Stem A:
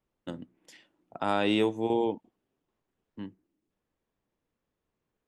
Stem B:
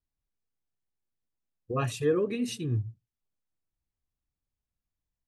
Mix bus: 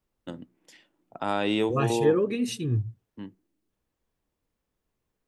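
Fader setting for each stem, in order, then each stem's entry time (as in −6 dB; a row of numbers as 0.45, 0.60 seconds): 0.0, +3.0 decibels; 0.00, 0.00 seconds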